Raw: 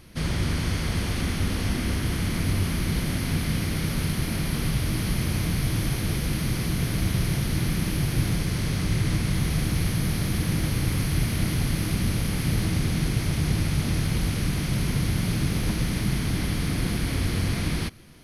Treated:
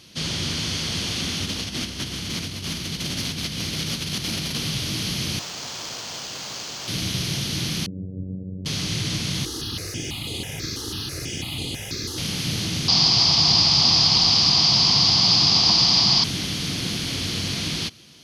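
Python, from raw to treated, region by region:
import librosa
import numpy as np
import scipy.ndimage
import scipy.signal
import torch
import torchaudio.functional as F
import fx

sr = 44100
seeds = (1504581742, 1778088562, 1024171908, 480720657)

y = fx.chain(x, sr, fx.peak_eq(hz=66.0, db=5.0, octaves=0.32),
    fx.over_compress(threshold_db=-27.0, ratio=-1.0),
    fx.clip_hard(threshold_db=-20.5), at=(1.45, 4.58))
y = fx.chain(y, sr, fx.pre_emphasis(coefficient=0.9),
    fx.resample_bad(factor=4, down='none', up='hold'), at=(5.39, 6.88))
y = fx.chain(y, sr, fx.steep_lowpass(hz=540.0, slope=48),
    fx.peak_eq(hz=350.0, db=-6.0, octaves=0.29),
    fx.robotise(hz=93.6), at=(7.86, 8.66))
y = fx.chain(y, sr, fx.lower_of_two(delay_ms=2.4),
    fx.phaser_held(hz=6.1, low_hz=630.0, high_hz=5600.0), at=(9.45, 12.18))
y = fx.chain(y, sr, fx.lowpass_res(hz=4900.0, q=10.0),
    fx.band_shelf(hz=900.0, db=14.5, octaves=1.0), at=(12.88, 16.24))
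y = scipy.signal.sosfilt(scipy.signal.butter(2, 110.0, 'highpass', fs=sr, output='sos'), y)
y = fx.band_shelf(y, sr, hz=4500.0, db=12.0, octaves=1.7)
y = y * librosa.db_to_amplitude(-1.5)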